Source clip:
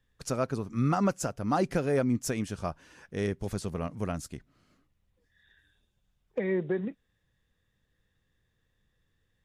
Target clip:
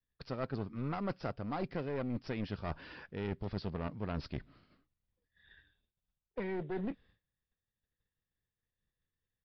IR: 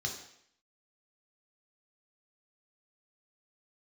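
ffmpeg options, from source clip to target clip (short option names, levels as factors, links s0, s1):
-af "agate=range=0.0224:threshold=0.00112:ratio=3:detection=peak,areverse,acompressor=threshold=0.0112:ratio=8,areverse,aeval=exprs='clip(val(0),-1,0.00596)':c=same,aresample=11025,aresample=44100,volume=2"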